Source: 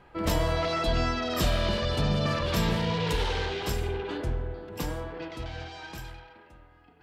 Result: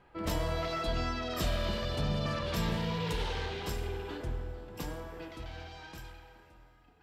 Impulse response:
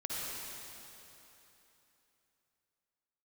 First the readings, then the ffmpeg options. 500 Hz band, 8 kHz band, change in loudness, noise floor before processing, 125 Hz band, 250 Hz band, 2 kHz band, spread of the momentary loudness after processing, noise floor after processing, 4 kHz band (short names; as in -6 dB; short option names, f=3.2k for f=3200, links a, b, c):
-6.5 dB, -6.5 dB, -6.0 dB, -56 dBFS, -6.0 dB, -6.0 dB, -6.5 dB, 13 LU, -61 dBFS, -6.5 dB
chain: -filter_complex "[0:a]asplit=2[a][b];[1:a]atrim=start_sample=2205,adelay=19[c];[b][c]afir=irnorm=-1:irlink=0,volume=-15.5dB[d];[a][d]amix=inputs=2:normalize=0,volume=-6.5dB"